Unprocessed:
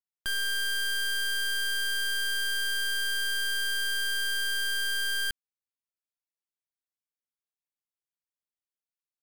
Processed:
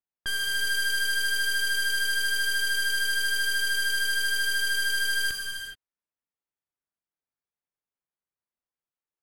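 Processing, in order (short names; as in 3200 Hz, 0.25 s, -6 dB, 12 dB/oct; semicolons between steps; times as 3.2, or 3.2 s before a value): low-pass opened by the level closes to 1800 Hz, open at -31 dBFS; vibrato 13 Hz 11 cents; non-linear reverb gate 0.45 s flat, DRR 1.5 dB; gain +1.5 dB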